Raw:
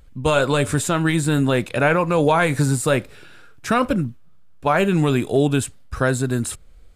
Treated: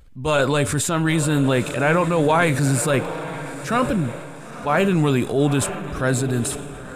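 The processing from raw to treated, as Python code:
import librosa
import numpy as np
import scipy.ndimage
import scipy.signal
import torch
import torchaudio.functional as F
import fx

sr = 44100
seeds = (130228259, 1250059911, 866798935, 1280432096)

y = fx.echo_diffused(x, sr, ms=951, feedback_pct=41, wet_db=-13.0)
y = fx.transient(y, sr, attack_db=-6, sustain_db=4)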